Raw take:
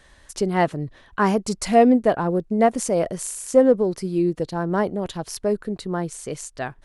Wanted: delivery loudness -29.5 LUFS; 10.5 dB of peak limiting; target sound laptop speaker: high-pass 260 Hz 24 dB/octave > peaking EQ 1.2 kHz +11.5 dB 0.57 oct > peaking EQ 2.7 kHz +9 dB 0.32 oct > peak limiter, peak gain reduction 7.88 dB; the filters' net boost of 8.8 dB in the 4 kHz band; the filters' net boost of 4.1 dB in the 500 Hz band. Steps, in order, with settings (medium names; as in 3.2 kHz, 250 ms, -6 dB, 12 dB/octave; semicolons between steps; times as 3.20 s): peaking EQ 500 Hz +4 dB; peaking EQ 4 kHz +8.5 dB; peak limiter -11 dBFS; high-pass 260 Hz 24 dB/octave; peaking EQ 1.2 kHz +11.5 dB 0.57 oct; peaking EQ 2.7 kHz +9 dB 0.32 oct; trim -5.5 dB; peak limiter -17.5 dBFS